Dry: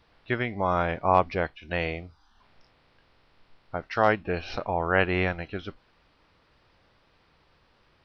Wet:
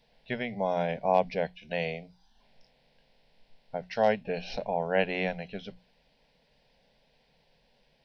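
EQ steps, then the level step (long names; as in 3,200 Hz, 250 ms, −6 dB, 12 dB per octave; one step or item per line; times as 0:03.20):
mains-hum notches 60/120/180 Hz
phaser with its sweep stopped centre 330 Hz, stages 6
0.0 dB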